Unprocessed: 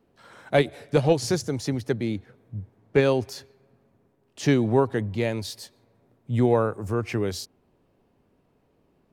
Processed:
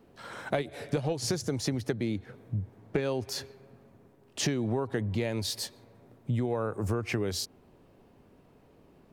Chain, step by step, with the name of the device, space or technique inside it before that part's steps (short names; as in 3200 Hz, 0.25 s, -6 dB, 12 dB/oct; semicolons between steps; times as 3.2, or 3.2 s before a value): serial compression, leveller first (compressor 2.5:1, threshold -22 dBFS, peak gain reduction 6 dB; compressor 5:1, threshold -34 dBFS, peak gain reduction 13.5 dB); gain +6.5 dB